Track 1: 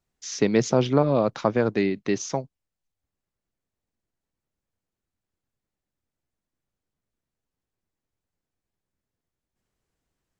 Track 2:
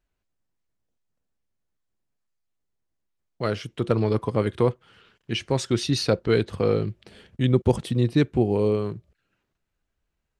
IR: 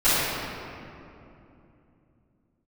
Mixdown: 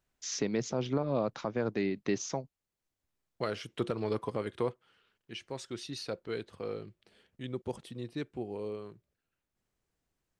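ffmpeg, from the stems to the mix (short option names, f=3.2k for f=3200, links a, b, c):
-filter_complex "[0:a]volume=-3dB[a];[1:a]lowshelf=f=170:g=-12,volume=-1.5dB,afade=t=out:st=4.38:d=0.64:silence=0.237137[b];[a][b]amix=inputs=2:normalize=0,alimiter=limit=-20dB:level=0:latency=1:release=454"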